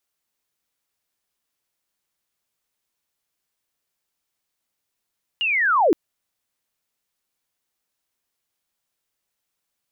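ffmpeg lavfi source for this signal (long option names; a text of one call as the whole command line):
ffmpeg -f lavfi -i "aevalsrc='pow(10,(-19.5+7*t/0.52)/20)*sin(2*PI*(2900*t-2620*t*t/(2*0.52)))':duration=0.52:sample_rate=44100" out.wav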